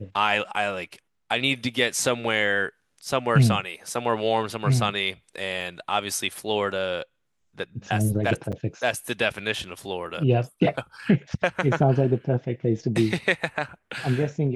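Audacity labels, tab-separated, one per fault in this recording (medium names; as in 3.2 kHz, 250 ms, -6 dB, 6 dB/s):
5.610000	5.610000	dropout 3.3 ms
8.520000	8.530000	dropout 7.1 ms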